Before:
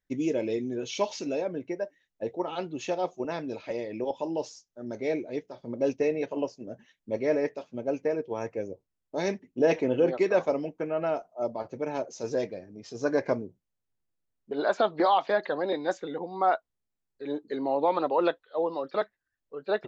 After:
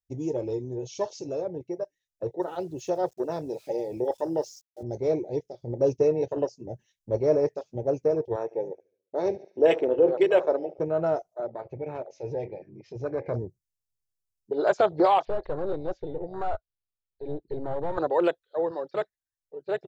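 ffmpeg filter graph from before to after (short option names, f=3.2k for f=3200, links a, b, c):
-filter_complex "[0:a]asettb=1/sr,asplit=3[a][b][c];[a]atrim=end=2.404[d];[b]atrim=start=2.4:end=4.83,asetpts=PTS-STARTPTS,afade=t=in:d=0.004:c=qsin,afade=t=out:st=2.426:d=0.004:c=qsin,highpass=140,aeval=exprs='val(0)*gte(abs(val(0)),0.00237)':c=same[e];[c]atrim=start=4.826[f];[d][e]acrossfade=d=0.004:c1=hsin:c2=qsin[g];[g][f]acrossfade=d=0.004:c1=qsin:c2=hsin,asettb=1/sr,asplit=3[h][i][j];[h]atrim=end=8.364[k];[i]atrim=start=8.36:end=10.8,asetpts=PTS-STARTPTS,afade=t=in:d=0.004:c=qsin,afade=t=out:st=2.436:d=0.004:c=qsin,highpass=310,lowpass=3k,aecho=1:1:71|142|213|284|355:0.133|0.0787|0.0464|0.0274|0.0162,atrim=end_sample=107604[l];[j]atrim=start=10.796[m];[k][l]acrossfade=d=0.004:c1=hsin:c2=qsin[n];[n][m]acrossfade=d=0.004:c1=qsin:c2=hsin,asettb=1/sr,asplit=3[o][p][q];[o]atrim=end=11.404[r];[p]atrim=start=11.4:end=13.34,asetpts=PTS-STARTPTS,afade=t=in:d=0.004:c=qsin,afade=t=out:st=1.936:d=0.004:c=qsin,lowpass=f=2.3k:t=q:w=4.1,acompressor=threshold=-42dB:ratio=1.5:attack=3.2:release=140:knee=1:detection=peak,bandreject=f=92.89:t=h:w=4,bandreject=f=185.78:t=h:w=4,bandreject=f=278.67:t=h:w=4,bandreject=f=371.56:t=h:w=4,bandreject=f=464.45:t=h:w=4,bandreject=f=557.34:t=h:w=4,bandreject=f=650.23:t=h:w=4,bandreject=f=743.12:t=h:w=4,bandreject=f=836.01:t=h:w=4,bandreject=f=928.9:t=h:w=4,bandreject=f=1.02179k:t=h:w=4,bandreject=f=1.11468k:t=h:w=4,bandreject=f=1.20757k:t=h:w=4,bandreject=f=1.30046k:t=h:w=4[s];[q]atrim=start=13.336[t];[r][s]acrossfade=d=0.004:c1=hsin:c2=qsin[u];[u][t]acrossfade=d=0.004:c1=qsin:c2=hsin,asettb=1/sr,asplit=3[v][w][x];[v]atrim=end=15.254[y];[w]atrim=start=15.25:end=17.98,asetpts=PTS-STARTPTS,afade=t=in:d=0.004:c=qsin,afade=t=out:st=2.726:d=0.004:c=qsin,aeval=exprs='(tanh(28.2*val(0)+0.5)-tanh(0.5))/28.2':c=same,lowpass=f=4.1k:w=0.5412,lowpass=f=4.1k:w=1.3066,acrossover=split=2800[z][aa];[aa]acompressor=threshold=-58dB:ratio=4:attack=1:release=60[ab];[z][ab]amix=inputs=2:normalize=0[ac];[x]atrim=start=17.976[ad];[y][ac]acrossfade=d=0.004:c1=hsin:c2=qsin[ae];[ae][ad]acrossfade=d=0.004:c1=qsin:c2=hsin,afwtdn=0.0178,firequalizer=gain_entry='entry(130,0);entry(230,-19);entry(360,-7);entry(1100,-13);entry(5400,5)':delay=0.05:min_phase=1,dynaudnorm=f=750:g=7:m=5dB,volume=7.5dB"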